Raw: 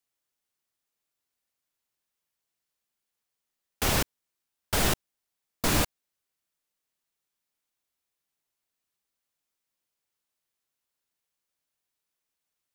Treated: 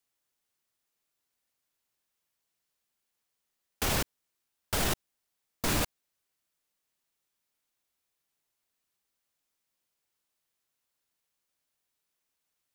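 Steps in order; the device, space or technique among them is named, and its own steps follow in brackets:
limiter into clipper (brickwall limiter −19.5 dBFS, peak gain reduction 7.5 dB; hard clipping −25 dBFS, distortion −16 dB)
level +2 dB

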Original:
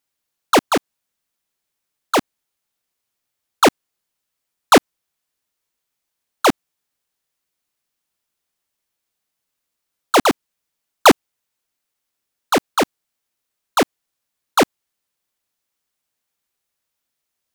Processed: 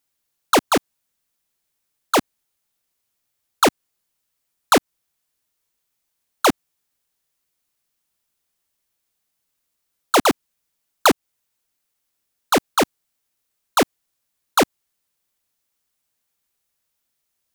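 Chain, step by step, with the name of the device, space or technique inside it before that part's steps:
ASMR close-microphone chain (low-shelf EQ 150 Hz +4.5 dB; downward compressor 5 to 1, threshold −13 dBFS, peak gain reduction 7.5 dB; high-shelf EQ 6,400 Hz +4.5 dB)

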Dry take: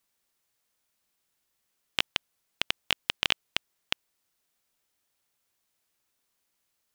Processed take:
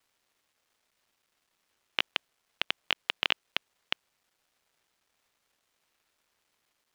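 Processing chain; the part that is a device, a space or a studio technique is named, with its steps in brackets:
phone line with mismatched companding (band-pass filter 340–3,500 Hz; mu-law and A-law mismatch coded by mu)

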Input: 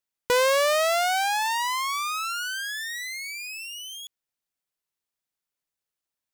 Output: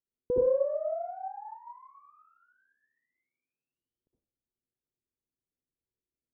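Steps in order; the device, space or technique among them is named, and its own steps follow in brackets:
0:02.06–0:03.72: high-pass filter 120 Hz
next room (low-pass filter 470 Hz 24 dB per octave; convolution reverb RT60 0.40 s, pre-delay 59 ms, DRR −4.5 dB)
high-frequency loss of the air 490 metres

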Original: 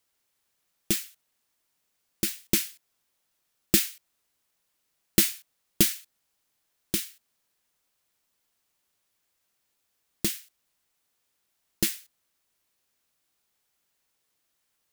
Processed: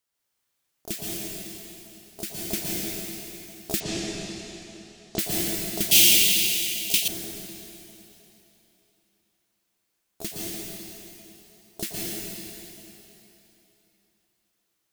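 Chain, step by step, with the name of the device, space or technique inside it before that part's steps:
shimmer-style reverb (pitch-shifted copies added +12 semitones −5 dB; convolution reverb RT60 3.4 s, pre-delay 110 ms, DRR −5.5 dB)
0:03.80–0:05.19: low-pass filter 6,900 Hz 24 dB per octave
0:05.91–0:07.08: high shelf with overshoot 1,900 Hz +12 dB, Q 3
level −7 dB

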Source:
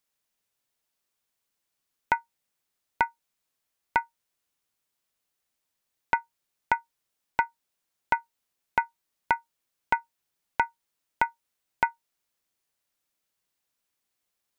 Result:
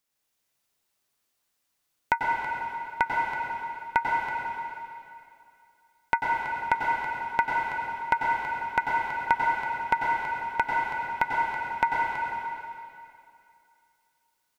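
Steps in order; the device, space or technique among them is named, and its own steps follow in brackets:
cave (single-tap delay 327 ms −11 dB; convolution reverb RT60 2.6 s, pre-delay 89 ms, DRR −2.5 dB)

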